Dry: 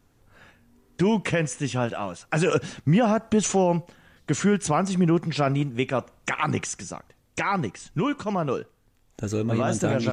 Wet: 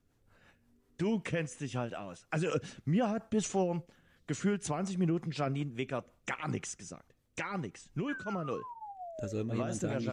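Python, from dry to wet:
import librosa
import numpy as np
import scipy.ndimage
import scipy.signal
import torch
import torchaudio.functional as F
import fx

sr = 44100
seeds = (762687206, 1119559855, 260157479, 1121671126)

y = fx.spec_paint(x, sr, seeds[0], shape='fall', start_s=8.08, length_s=1.25, low_hz=550.0, high_hz=1700.0, level_db=-32.0)
y = fx.rotary(y, sr, hz=5.5)
y = F.gain(torch.from_numpy(y), -8.5).numpy()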